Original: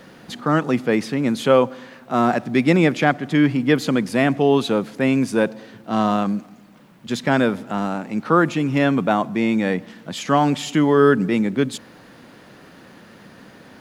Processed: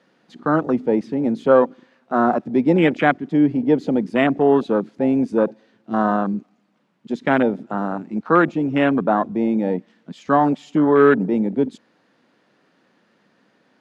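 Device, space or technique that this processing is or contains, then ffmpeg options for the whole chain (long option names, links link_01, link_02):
over-cleaned archive recording: -af "highpass=190,lowpass=6800,afwtdn=0.0794,volume=1.5dB"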